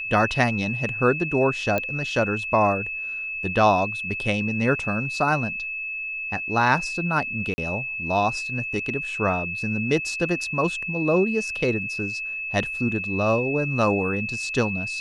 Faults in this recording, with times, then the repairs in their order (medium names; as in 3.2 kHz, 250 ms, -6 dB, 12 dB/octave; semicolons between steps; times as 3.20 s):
whine 2.6 kHz -28 dBFS
1.78 s: pop -11 dBFS
7.54–7.58 s: dropout 40 ms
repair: de-click; band-stop 2.6 kHz, Q 30; interpolate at 7.54 s, 40 ms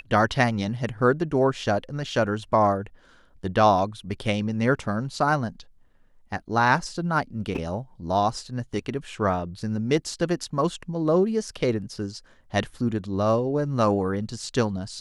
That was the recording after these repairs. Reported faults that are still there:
nothing left